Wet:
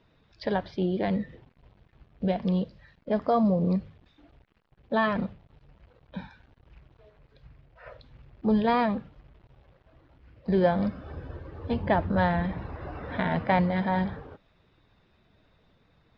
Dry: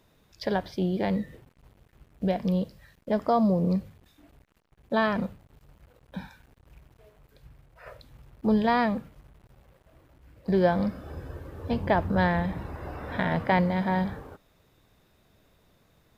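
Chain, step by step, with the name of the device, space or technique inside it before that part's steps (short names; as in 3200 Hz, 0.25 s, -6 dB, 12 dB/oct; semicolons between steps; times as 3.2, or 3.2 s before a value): clip after many re-uploads (LPF 4500 Hz 24 dB/oct; bin magnitudes rounded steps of 15 dB)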